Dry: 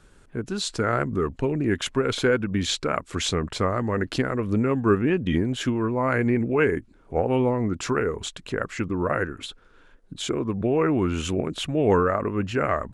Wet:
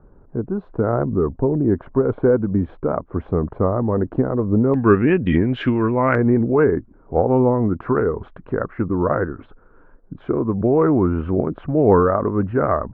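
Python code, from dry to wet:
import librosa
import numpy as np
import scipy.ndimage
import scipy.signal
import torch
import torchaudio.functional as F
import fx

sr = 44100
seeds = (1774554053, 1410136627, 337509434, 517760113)

y = fx.lowpass(x, sr, hz=fx.steps((0.0, 1000.0), (4.74, 2600.0), (6.15, 1300.0)), slope=24)
y = y * librosa.db_to_amplitude(6.0)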